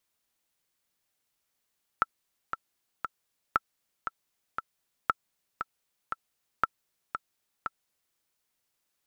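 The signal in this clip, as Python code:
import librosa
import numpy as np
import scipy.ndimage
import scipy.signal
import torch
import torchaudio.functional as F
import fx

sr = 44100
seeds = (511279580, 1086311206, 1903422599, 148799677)

y = fx.click_track(sr, bpm=117, beats=3, bars=4, hz=1330.0, accent_db=8.5, level_db=-9.5)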